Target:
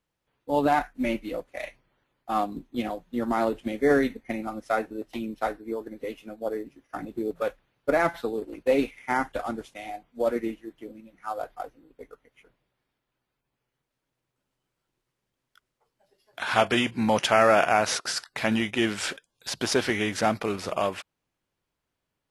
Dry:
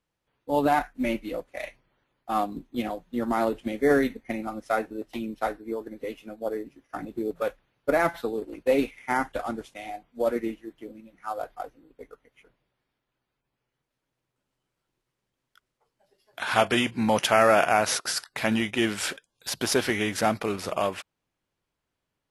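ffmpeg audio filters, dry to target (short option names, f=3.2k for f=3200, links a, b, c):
-filter_complex "[0:a]acrossover=split=9600[a][b];[b]acompressor=threshold=-58dB:ratio=4:attack=1:release=60[c];[a][c]amix=inputs=2:normalize=0"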